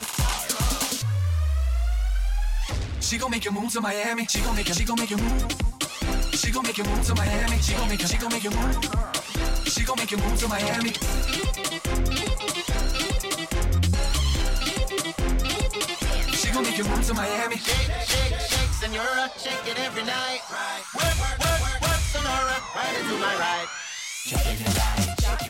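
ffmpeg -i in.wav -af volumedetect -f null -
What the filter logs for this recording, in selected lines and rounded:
mean_volume: -24.4 dB
max_volume: -14.2 dB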